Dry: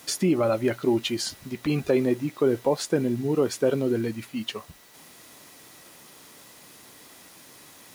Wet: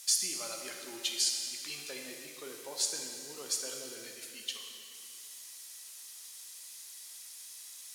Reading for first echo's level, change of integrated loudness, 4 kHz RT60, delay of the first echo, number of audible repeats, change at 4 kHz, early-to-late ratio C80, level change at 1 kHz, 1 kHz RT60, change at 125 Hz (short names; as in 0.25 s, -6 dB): none, -11.5 dB, 2.1 s, none, none, 0.0 dB, 4.5 dB, -16.0 dB, 2.5 s, -33.5 dB